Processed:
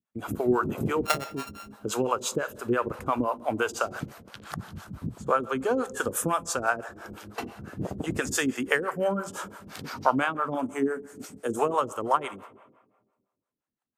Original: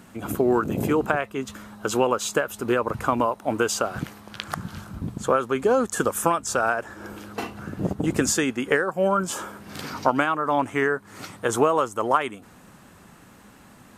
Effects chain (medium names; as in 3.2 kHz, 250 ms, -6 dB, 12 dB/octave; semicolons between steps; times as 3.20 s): 1.05–1.72 s: sorted samples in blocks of 32 samples; 8.30–9.04 s: treble shelf 6.5 kHz +8.5 dB; gate -43 dBFS, range -39 dB; 10.54–11.59 s: graphic EQ 125/250/1000/2000/4000/8000 Hz -8/+8/-10/-7/-8/+6 dB; reverberation RT60 1.4 s, pre-delay 3 ms, DRR 13.5 dB; harmonic tremolo 5.9 Hz, depth 100%, crossover 460 Hz